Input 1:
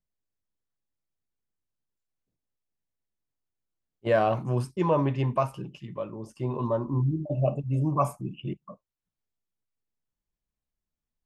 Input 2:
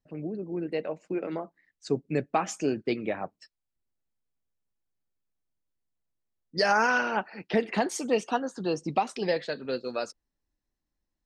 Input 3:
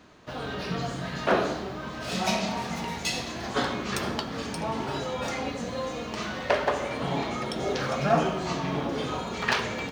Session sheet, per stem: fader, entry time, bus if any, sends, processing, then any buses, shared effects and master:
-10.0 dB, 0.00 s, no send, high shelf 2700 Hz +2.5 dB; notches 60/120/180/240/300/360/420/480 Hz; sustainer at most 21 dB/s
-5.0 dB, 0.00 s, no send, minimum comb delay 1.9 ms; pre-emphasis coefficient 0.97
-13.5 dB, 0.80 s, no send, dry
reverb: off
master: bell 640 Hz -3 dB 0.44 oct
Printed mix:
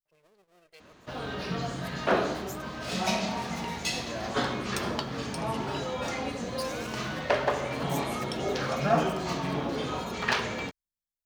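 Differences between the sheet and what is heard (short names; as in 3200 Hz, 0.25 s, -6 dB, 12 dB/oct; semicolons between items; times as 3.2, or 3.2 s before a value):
stem 1 -10.0 dB -> -18.5 dB; stem 3 -13.5 dB -> -1.5 dB; master: missing bell 640 Hz -3 dB 0.44 oct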